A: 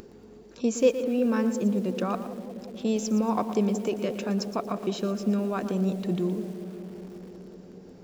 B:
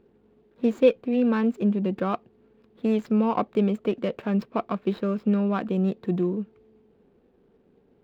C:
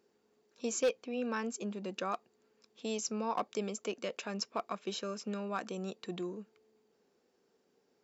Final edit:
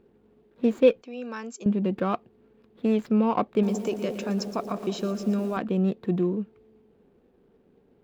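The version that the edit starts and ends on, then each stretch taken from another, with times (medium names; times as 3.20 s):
B
1.02–1.66 s: from C
3.63–5.57 s: from A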